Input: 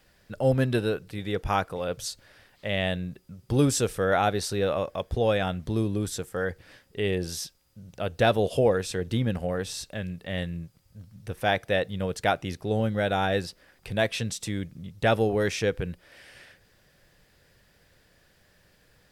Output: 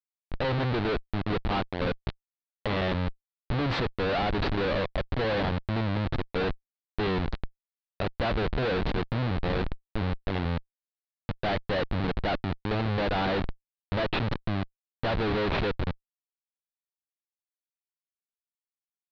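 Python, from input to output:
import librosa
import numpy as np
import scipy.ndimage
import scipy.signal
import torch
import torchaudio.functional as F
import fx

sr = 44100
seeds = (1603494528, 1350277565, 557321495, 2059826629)

y = fx.env_lowpass(x, sr, base_hz=1600.0, full_db=-23.0)
y = fx.schmitt(y, sr, flips_db=-28.5)
y = scipy.signal.sosfilt(scipy.signal.ellip(4, 1.0, 70, 4200.0, 'lowpass', fs=sr, output='sos'), y)
y = y * 10.0 ** (3.0 / 20.0)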